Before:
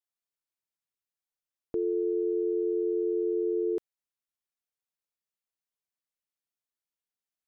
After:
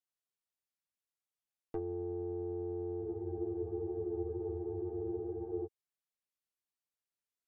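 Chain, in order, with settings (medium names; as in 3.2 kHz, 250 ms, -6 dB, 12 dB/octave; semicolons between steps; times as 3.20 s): single-diode clipper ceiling -37 dBFS; low-pass that closes with the level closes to 390 Hz, closed at -29.5 dBFS; spectral freeze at 3.05 s, 2.60 s; trim -4 dB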